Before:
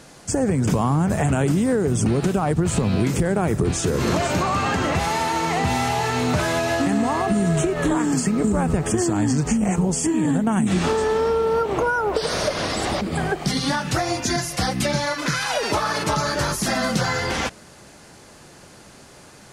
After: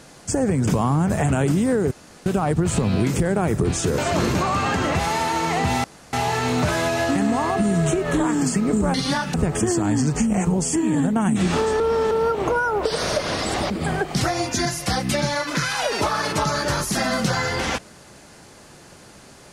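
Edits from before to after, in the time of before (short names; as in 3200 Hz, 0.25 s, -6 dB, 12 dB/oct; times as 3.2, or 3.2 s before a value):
1.91–2.26 room tone
3.98–4.35 reverse
5.84 insert room tone 0.29 s
11.11–11.42 reverse
13.52–13.92 move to 8.65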